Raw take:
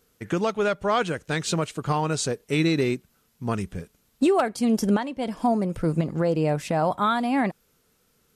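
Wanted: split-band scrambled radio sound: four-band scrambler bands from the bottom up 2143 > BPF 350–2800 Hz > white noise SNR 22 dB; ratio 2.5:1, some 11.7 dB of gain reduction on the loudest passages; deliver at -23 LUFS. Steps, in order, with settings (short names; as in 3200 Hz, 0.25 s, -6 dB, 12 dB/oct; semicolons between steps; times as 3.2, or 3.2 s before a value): compressor 2.5:1, threshold -35 dBFS; four-band scrambler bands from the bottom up 2143; BPF 350–2800 Hz; white noise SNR 22 dB; gain +10.5 dB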